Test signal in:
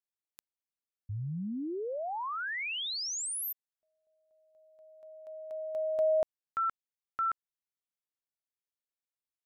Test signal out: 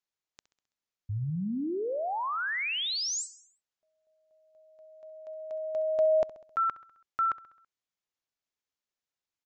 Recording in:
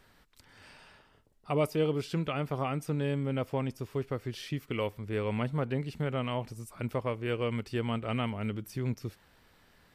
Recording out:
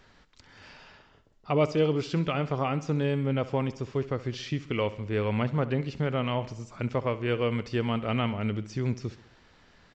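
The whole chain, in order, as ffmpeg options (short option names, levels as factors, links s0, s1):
-af "aecho=1:1:66|132|198|264|330:0.15|0.0823|0.0453|0.0249|0.0137,aresample=16000,aresample=44100,volume=1.58"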